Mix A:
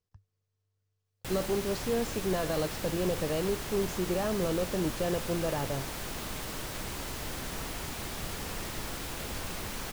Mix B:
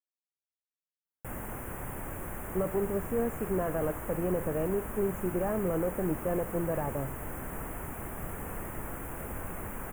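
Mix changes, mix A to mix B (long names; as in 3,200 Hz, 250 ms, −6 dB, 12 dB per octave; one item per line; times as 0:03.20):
speech: entry +1.25 s
master: add Butterworth band-reject 4,500 Hz, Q 0.54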